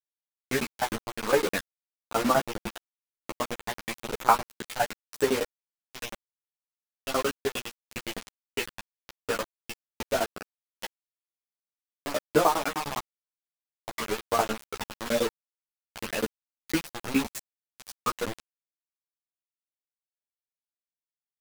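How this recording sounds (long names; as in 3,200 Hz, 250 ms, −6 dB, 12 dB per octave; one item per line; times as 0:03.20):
tremolo saw down 9.8 Hz, depth 95%
phaser sweep stages 12, 0.99 Hz, lowest notch 380–5,000 Hz
a quantiser's noise floor 6 bits, dither none
a shimmering, thickened sound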